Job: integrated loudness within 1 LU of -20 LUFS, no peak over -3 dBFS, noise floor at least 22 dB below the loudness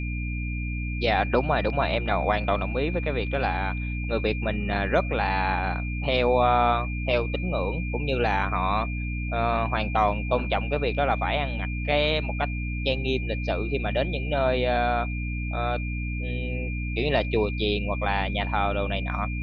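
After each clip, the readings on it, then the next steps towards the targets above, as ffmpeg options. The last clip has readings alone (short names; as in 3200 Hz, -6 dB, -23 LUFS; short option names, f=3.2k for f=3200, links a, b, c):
hum 60 Hz; harmonics up to 300 Hz; hum level -27 dBFS; steady tone 2400 Hz; tone level -36 dBFS; loudness -26.0 LUFS; peak -8.0 dBFS; loudness target -20.0 LUFS
-> -af "bandreject=f=60:t=h:w=6,bandreject=f=120:t=h:w=6,bandreject=f=180:t=h:w=6,bandreject=f=240:t=h:w=6,bandreject=f=300:t=h:w=6"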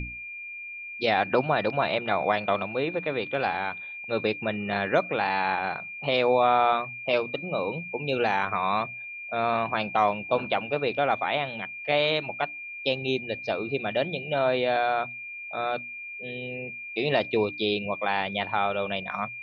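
hum none; steady tone 2400 Hz; tone level -36 dBFS
-> -af "bandreject=f=2.4k:w=30"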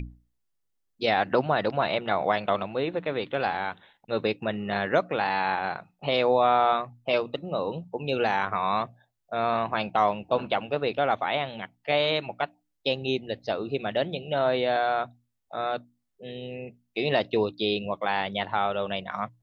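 steady tone none; loudness -27.5 LUFS; peak -8.5 dBFS; loudness target -20.0 LUFS
-> -af "volume=7.5dB,alimiter=limit=-3dB:level=0:latency=1"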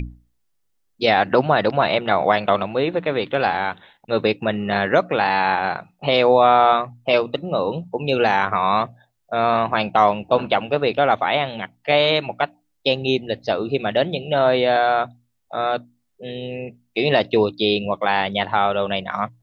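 loudness -20.0 LUFS; peak -3.0 dBFS; noise floor -69 dBFS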